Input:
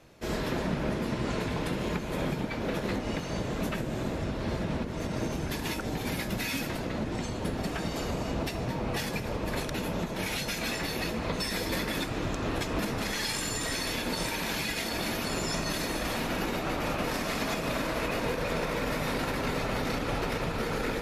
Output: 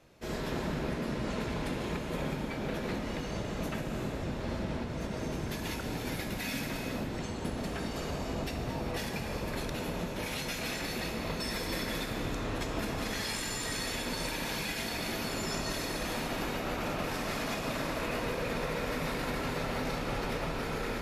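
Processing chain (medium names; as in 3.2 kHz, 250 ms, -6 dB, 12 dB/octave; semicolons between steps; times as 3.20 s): 11.11–11.75 s: short-mantissa float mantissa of 6-bit; gated-style reverb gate 440 ms flat, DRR 3 dB; trim -5 dB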